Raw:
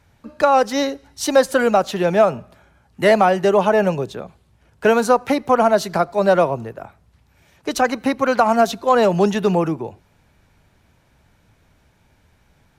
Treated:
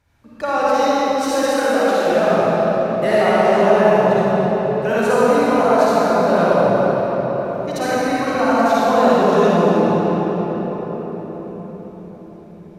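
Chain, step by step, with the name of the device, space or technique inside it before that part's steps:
0:01.28–0:02.07: low-shelf EQ 330 Hz −7 dB
cathedral (convolution reverb RT60 5.5 s, pre-delay 44 ms, DRR −10.5 dB)
level −9 dB

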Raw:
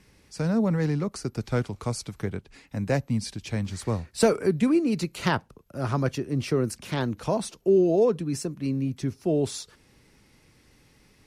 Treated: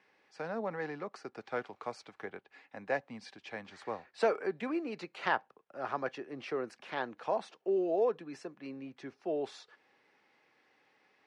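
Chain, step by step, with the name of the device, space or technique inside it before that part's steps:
tin-can telephone (band-pass filter 530–2,600 Hz; hollow resonant body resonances 780/1,700 Hz, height 7 dB)
level −4 dB

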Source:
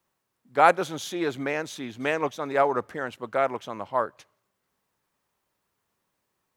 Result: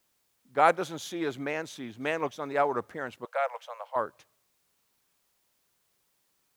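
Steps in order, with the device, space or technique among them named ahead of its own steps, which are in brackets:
plain cassette with noise reduction switched in (one half of a high-frequency compander decoder only; tape wow and flutter; white noise bed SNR 41 dB)
0:03.25–0:03.96: Chebyshev high-pass filter 480 Hz, order 8
level −4 dB

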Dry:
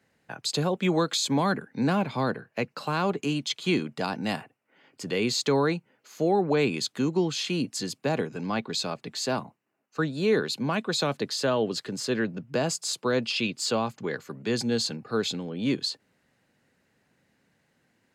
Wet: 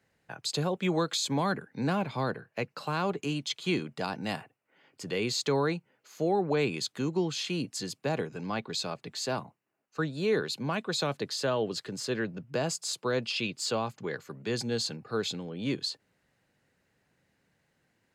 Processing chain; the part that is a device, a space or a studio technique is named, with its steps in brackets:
low shelf boost with a cut just above (low-shelf EQ 67 Hz +7.5 dB; parametric band 240 Hz −4.5 dB 0.51 octaves)
level −3.5 dB

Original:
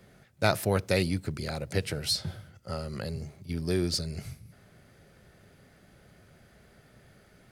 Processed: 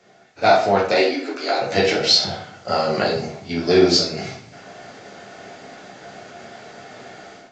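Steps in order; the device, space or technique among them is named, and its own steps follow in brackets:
0:00.92–0:01.62: Butterworth high-pass 260 Hz 96 dB per octave
filmed off a television (band-pass filter 270–6,600 Hz; parametric band 720 Hz +11 dB 0.3 octaves; convolution reverb RT60 0.50 s, pre-delay 7 ms, DRR −4.5 dB; white noise bed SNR 34 dB; automatic gain control gain up to 13.5 dB; AAC 32 kbit/s 16,000 Hz)

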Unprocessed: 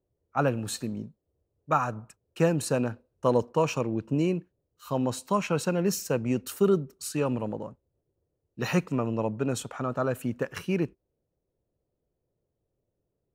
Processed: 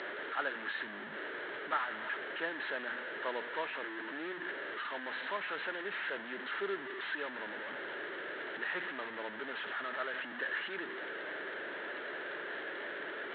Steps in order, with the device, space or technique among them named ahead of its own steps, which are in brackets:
digital answering machine (band-pass filter 390–3,300 Hz; linear delta modulator 16 kbit/s, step −26.5 dBFS; loudspeaker in its box 470–4,400 Hz, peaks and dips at 500 Hz −9 dB, 750 Hz −9 dB, 1,100 Hz −7 dB, 1,700 Hz +9 dB, 2,500 Hz −9 dB, 4,100 Hz +9 dB)
level −4.5 dB

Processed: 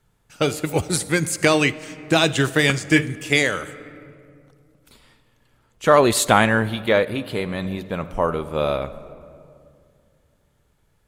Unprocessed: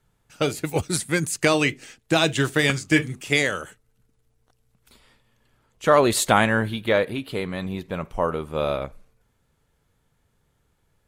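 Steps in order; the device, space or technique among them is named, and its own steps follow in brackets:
compressed reverb return (on a send at −12 dB: convolution reverb RT60 2.2 s, pre-delay 50 ms + downward compressor 4 to 1, threshold −24 dBFS, peak gain reduction 10 dB)
on the sum: level +2.5 dB

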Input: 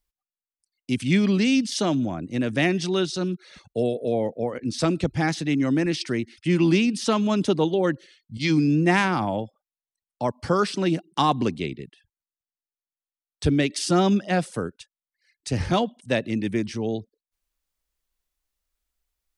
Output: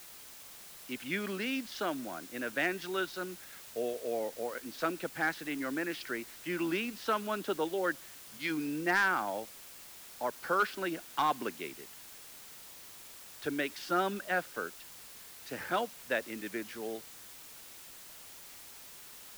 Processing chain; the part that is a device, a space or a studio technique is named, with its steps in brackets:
drive-through speaker (band-pass filter 390–3,300 Hz; parametric band 1,500 Hz +11 dB 0.47 octaves; hard clipping −12 dBFS, distortion −21 dB; white noise bed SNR 14 dB)
level −8.5 dB

